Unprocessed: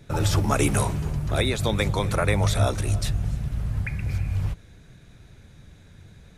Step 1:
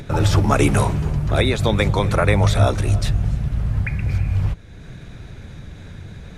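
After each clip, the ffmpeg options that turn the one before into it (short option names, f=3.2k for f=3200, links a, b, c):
-filter_complex "[0:a]lowpass=f=3.9k:p=1,asplit=2[a][b];[b]acompressor=mode=upward:threshold=-27dB:ratio=2.5,volume=0dB[c];[a][c]amix=inputs=2:normalize=0"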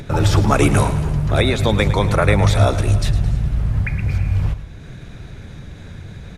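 -af "aecho=1:1:108|216|324|432|540:0.211|0.108|0.055|0.028|0.0143,volume=1.5dB"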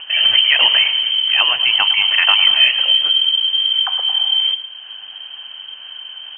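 -af "lowpass=f=2.7k:t=q:w=0.5098,lowpass=f=2.7k:t=q:w=0.6013,lowpass=f=2.7k:t=q:w=0.9,lowpass=f=2.7k:t=q:w=2.563,afreqshift=-3200,volume=1dB"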